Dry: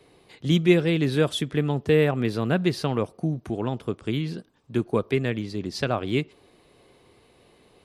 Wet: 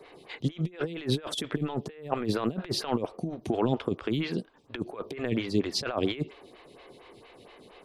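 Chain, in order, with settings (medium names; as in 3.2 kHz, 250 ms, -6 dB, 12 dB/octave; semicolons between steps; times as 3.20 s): FFT filter 140 Hz 0 dB, 3.3 kHz +7 dB, 10 kHz -3 dB; compressor with a negative ratio -26 dBFS, ratio -0.5; lamp-driven phase shifter 4.3 Hz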